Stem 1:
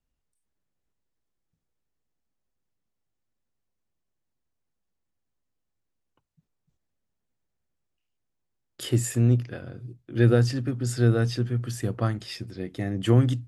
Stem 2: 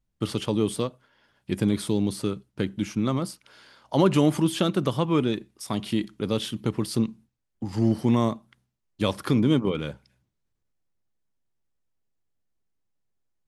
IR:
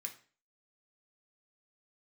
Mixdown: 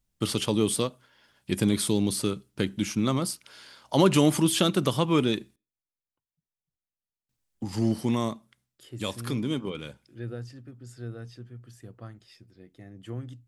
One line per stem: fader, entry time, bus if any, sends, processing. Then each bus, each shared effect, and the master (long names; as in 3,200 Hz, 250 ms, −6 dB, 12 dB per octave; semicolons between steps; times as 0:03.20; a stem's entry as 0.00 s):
−17.5 dB, 0.00 s, no send, no processing
−0.5 dB, 0.00 s, muted 0:05.56–0:07.29, send −20.5 dB, high-shelf EQ 3,300 Hz +9 dB; automatic ducking −8 dB, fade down 1.35 s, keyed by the first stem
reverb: on, RT60 0.40 s, pre-delay 3 ms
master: no processing